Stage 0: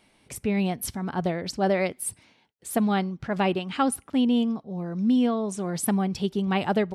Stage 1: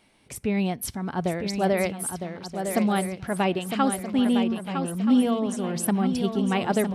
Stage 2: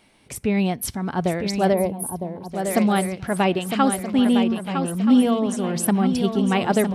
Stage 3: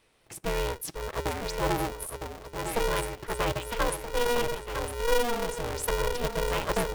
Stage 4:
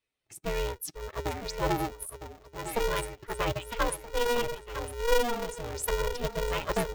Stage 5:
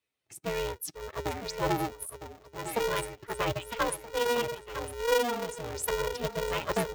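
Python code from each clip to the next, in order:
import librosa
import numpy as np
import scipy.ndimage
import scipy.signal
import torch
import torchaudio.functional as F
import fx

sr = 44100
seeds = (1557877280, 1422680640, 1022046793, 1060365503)

y1 = fx.echo_swing(x, sr, ms=1277, ratio=3, feedback_pct=30, wet_db=-7.0)
y2 = fx.spec_box(y1, sr, start_s=1.74, length_s=0.77, low_hz=1100.0, high_hz=9200.0, gain_db=-15)
y2 = y2 * librosa.db_to_amplitude(4.0)
y3 = y2 * np.sign(np.sin(2.0 * np.pi * 240.0 * np.arange(len(y2)) / sr))
y3 = y3 * librosa.db_to_amplitude(-8.5)
y4 = fx.bin_expand(y3, sr, power=1.5)
y4 = y4 * librosa.db_to_amplitude(1.5)
y5 = scipy.signal.sosfilt(scipy.signal.butter(2, 74.0, 'highpass', fs=sr, output='sos'), y4)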